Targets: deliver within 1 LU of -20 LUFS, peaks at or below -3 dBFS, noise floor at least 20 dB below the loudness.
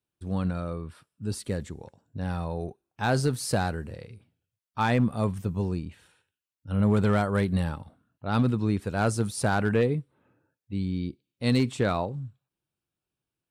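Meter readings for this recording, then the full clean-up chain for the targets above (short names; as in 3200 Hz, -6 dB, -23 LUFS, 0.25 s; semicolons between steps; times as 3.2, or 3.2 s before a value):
clipped 0.3%; flat tops at -16.0 dBFS; loudness -28.0 LUFS; peak -16.0 dBFS; loudness target -20.0 LUFS
-> clip repair -16 dBFS; gain +8 dB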